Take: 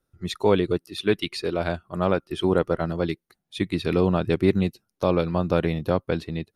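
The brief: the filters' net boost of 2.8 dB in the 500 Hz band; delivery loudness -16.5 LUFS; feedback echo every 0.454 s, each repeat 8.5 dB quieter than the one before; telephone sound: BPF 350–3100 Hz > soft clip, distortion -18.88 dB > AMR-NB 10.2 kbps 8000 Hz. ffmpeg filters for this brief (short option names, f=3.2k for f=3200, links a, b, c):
-af "highpass=350,lowpass=3.1k,equalizer=f=500:t=o:g=5,aecho=1:1:454|908|1362|1816:0.376|0.143|0.0543|0.0206,asoftclip=threshold=-10.5dB,volume=8.5dB" -ar 8000 -c:a libopencore_amrnb -b:a 10200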